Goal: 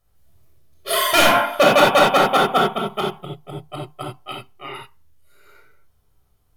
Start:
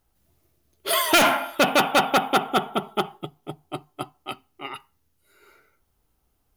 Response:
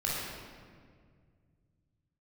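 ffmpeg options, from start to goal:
-filter_complex "[0:a]asettb=1/sr,asplit=3[link_01][link_02][link_03];[link_01]atrim=end=1.274[link_04];[link_02]atrim=start=1.27:end=2.66,asetpts=PTS-STARTPTS,afade=type=in:duration=0.004:curve=qsin,afade=type=out:start_time=1.386:duration=0.004:curve=qsin,equalizer=frequency=600:width=0.37:gain=4[link_05];[link_03]atrim=start=2.656[link_06];[link_04][link_05]acrossfade=duration=0.004:curve1=hsin:curve2=qsin[link_07];[link_07][link_06]acrossfade=duration=0.004:curve1=qsin:curve2=hsin[link_08];[1:a]atrim=start_sample=2205,atrim=end_sample=3528,asetrate=36162,aresample=44100[link_09];[link_08][link_09]afir=irnorm=-1:irlink=0,volume=-2.5dB"

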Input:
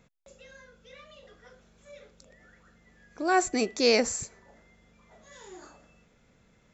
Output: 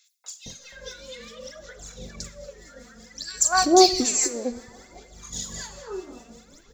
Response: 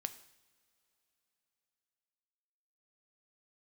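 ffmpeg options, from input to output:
-filter_complex "[0:a]highshelf=frequency=3400:width_type=q:width=1.5:gain=8,acompressor=threshold=-29dB:ratio=12,acrossover=split=1200[link_01][link_02];[link_01]aeval=exprs='val(0)*(1-0.7/2+0.7/2*cos(2*PI*5.1*n/s))':channel_layout=same[link_03];[link_02]aeval=exprs='val(0)*(1-0.7/2-0.7/2*cos(2*PI*5.1*n/s))':channel_layout=same[link_04];[link_03][link_04]amix=inputs=2:normalize=0,aphaser=in_gain=1:out_gain=1:delay=4.3:decay=0.75:speed=0.6:type=sinusoidal,acrossover=split=860|2800[link_05][link_06][link_07];[link_06]adelay=240[link_08];[link_05]adelay=460[link_09];[link_09][link_08][link_07]amix=inputs=3:normalize=0,asplit=2[link_10][link_11];[1:a]atrim=start_sample=2205[link_12];[link_11][link_12]afir=irnorm=-1:irlink=0,volume=11dB[link_13];[link_10][link_13]amix=inputs=2:normalize=0"

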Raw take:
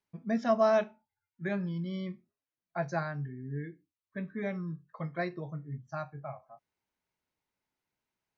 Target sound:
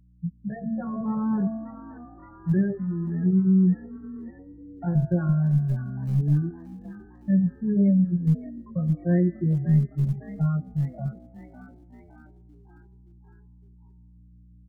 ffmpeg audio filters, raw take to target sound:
ffmpeg -i in.wav -filter_complex "[0:a]afftfilt=real='re*gte(hypot(re,im),0.0562)':imag='im*gte(hypot(re,im),0.0562)':win_size=1024:overlap=0.75,bandreject=frequency=110.9:width_type=h:width=4,bandreject=frequency=221.8:width_type=h:width=4,bandreject=frequency=332.7:width_type=h:width=4,bandreject=frequency=443.6:width_type=h:width=4,bandreject=frequency=554.5:width_type=h:width=4,bandreject=frequency=665.4:width_type=h:width=4,bandreject=frequency=776.3:width_type=h:width=4,bandreject=frequency=887.2:width_type=h:width=4,bandreject=frequency=998.1:width_type=h:width=4,bandreject=frequency=1109:width_type=h:width=4,bandreject=frequency=1219.9:width_type=h:width=4,bandreject=frequency=1330.8:width_type=h:width=4,bandreject=frequency=1441.7:width_type=h:width=4,bandreject=frequency=1552.6:width_type=h:width=4,bandreject=frequency=1663.5:width_type=h:width=4,bandreject=frequency=1774.4:width_type=h:width=4,bandreject=frequency=1885.3:width_type=h:width=4,bandreject=frequency=1996.2:width_type=h:width=4,afftfilt=real='re*lt(hypot(re,im),0.2)':imag='im*lt(hypot(re,im),0.2)':win_size=1024:overlap=0.75,acrossover=split=100|1100[link_01][link_02][link_03];[link_01]acrusher=bits=6:dc=4:mix=0:aa=0.000001[link_04];[link_04][link_02][link_03]amix=inputs=3:normalize=0,aeval=exprs='val(0)+0.000398*(sin(2*PI*60*n/s)+sin(2*PI*2*60*n/s)/2+sin(2*PI*3*60*n/s)/3+sin(2*PI*4*60*n/s)/4+sin(2*PI*5*60*n/s)/5)':channel_layout=same,aecho=1:1:5.6:0.92,asplit=6[link_05][link_06][link_07][link_08][link_09][link_10];[link_06]adelay=323,afreqshift=50,volume=-17.5dB[link_11];[link_07]adelay=646,afreqshift=100,volume=-22.4dB[link_12];[link_08]adelay=969,afreqshift=150,volume=-27.3dB[link_13];[link_09]adelay=1292,afreqshift=200,volume=-32.1dB[link_14];[link_10]adelay=1615,afreqshift=250,volume=-37dB[link_15];[link_05][link_11][link_12][link_13][link_14][link_15]amix=inputs=6:normalize=0,dynaudnorm=framelen=120:gausssize=7:maxgain=5dB,atempo=0.57,acrossover=split=480[link_16][link_17];[link_17]acompressor=threshold=-53dB:ratio=2[link_18];[link_16][link_18]amix=inputs=2:normalize=0,bass=frequency=250:gain=12,treble=frequency=4000:gain=6,volume=1dB" out.wav

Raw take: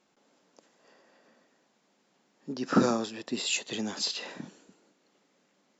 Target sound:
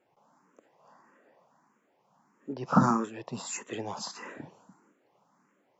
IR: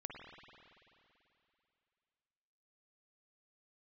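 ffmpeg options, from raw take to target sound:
-filter_complex "[0:a]equalizer=frequency=125:width_type=o:width=1:gain=10,equalizer=frequency=1000:width_type=o:width=1:gain=11,equalizer=frequency=4000:width_type=o:width=1:gain=-12,asplit=2[link_01][link_02];[link_02]afreqshift=1.6[link_03];[link_01][link_03]amix=inputs=2:normalize=1"

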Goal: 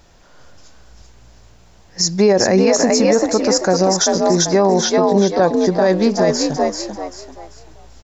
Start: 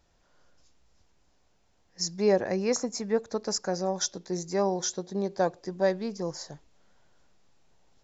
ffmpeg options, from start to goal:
ffmpeg -i in.wav -filter_complex "[0:a]asettb=1/sr,asplit=3[link_01][link_02][link_03];[link_01]atrim=end=4.264[link_04];[link_02]atrim=start=4.26:end=5.43,asetpts=PTS-STARTPTS,afade=type=in:duration=0.004:curve=qsin,afade=type=out:start_time=1.166:duration=0.004:curve=qsin,lowpass=frequency=4600:width=0.5412,lowpass=frequency=4600:width=1.3066[link_05];[link_03]atrim=start=5.426[link_06];[link_04][link_05]acrossfade=duration=0.004:curve1=hsin:curve2=qsin[link_07];[link_07][link_06]acrossfade=duration=0.004:curve1=qsin:curve2=hsin,asplit=2[link_08][link_09];[link_09]asplit=4[link_10][link_11][link_12][link_13];[link_10]adelay=389,afreqshift=58,volume=-5dB[link_14];[link_11]adelay=778,afreqshift=116,volume=-14.9dB[link_15];[link_12]adelay=1167,afreqshift=174,volume=-24.8dB[link_16];[link_13]adelay=1556,afreqshift=232,volume=-34.7dB[link_17];[link_14][link_15][link_16][link_17]amix=inputs=4:normalize=0[link_18];[link_08][link_18]amix=inputs=2:normalize=0,alimiter=level_in=22dB:limit=-1dB:release=50:level=0:latency=1,volume=-4dB" out.wav

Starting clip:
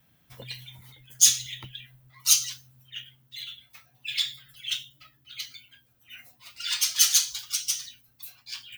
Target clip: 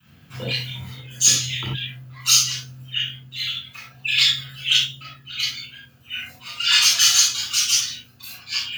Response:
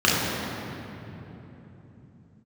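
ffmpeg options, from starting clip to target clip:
-filter_complex "[0:a]adynamicequalizer=threshold=0.00224:dfrequency=530:dqfactor=1.2:tfrequency=530:tqfactor=1.2:attack=5:release=100:ratio=0.375:range=2.5:mode=boostabove:tftype=bell,acrossover=split=930[link_01][link_02];[link_02]alimiter=limit=-12dB:level=0:latency=1:release=381[link_03];[link_01][link_03]amix=inputs=2:normalize=0[link_04];[1:a]atrim=start_sample=2205,afade=type=out:start_time=0.15:duration=0.01,atrim=end_sample=7056[link_05];[link_04][link_05]afir=irnorm=-1:irlink=0,volume=-4dB"

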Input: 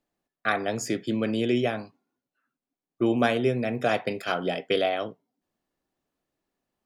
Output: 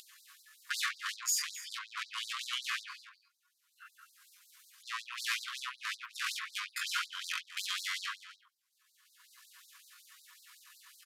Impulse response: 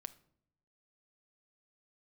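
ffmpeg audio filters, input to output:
-filter_complex "[0:a]lowshelf=frequency=200:gain=4.5,aecho=1:1:6.3:0.58,acompressor=mode=upward:threshold=-32dB:ratio=2.5,aeval=exprs='(tanh(50.1*val(0)+0.7)-tanh(0.7))/50.1':channel_layout=same,atempo=0.62,asplit=2[link_01][link_02];[link_02]aecho=0:1:258:0.168[link_03];[link_01][link_03]amix=inputs=2:normalize=0,aresample=32000,aresample=44100,afftfilt=real='re*gte(b*sr/1024,960*pow(3900/960,0.5+0.5*sin(2*PI*5.4*pts/sr)))':imag='im*gte(b*sr/1024,960*pow(3900/960,0.5+0.5*sin(2*PI*5.4*pts/sr)))':win_size=1024:overlap=0.75,volume=8.5dB"

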